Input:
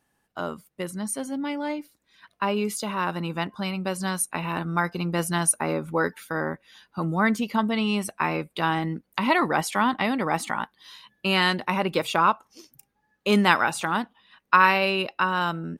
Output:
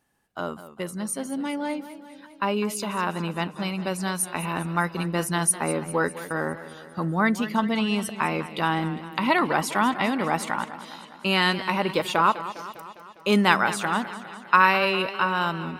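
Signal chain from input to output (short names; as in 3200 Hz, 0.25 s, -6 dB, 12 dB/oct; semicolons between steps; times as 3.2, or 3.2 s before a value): warbling echo 0.202 s, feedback 62%, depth 91 cents, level -14 dB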